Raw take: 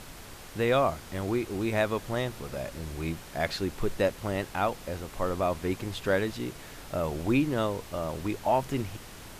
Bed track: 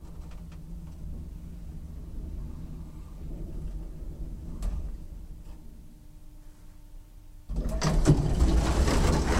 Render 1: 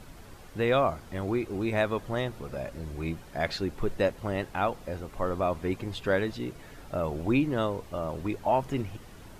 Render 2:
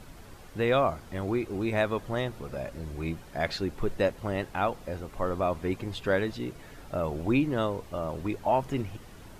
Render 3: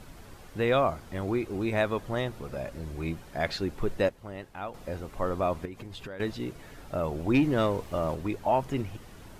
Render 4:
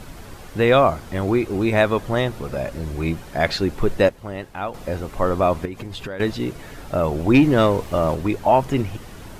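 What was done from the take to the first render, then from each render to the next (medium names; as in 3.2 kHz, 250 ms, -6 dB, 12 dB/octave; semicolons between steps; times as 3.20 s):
noise reduction 9 dB, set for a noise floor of -46 dBFS
no audible change
4.09–4.74 s: gain -9.5 dB; 5.65–6.20 s: compression 8:1, threshold -37 dBFS; 7.34–8.15 s: waveshaping leveller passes 1
trim +9.5 dB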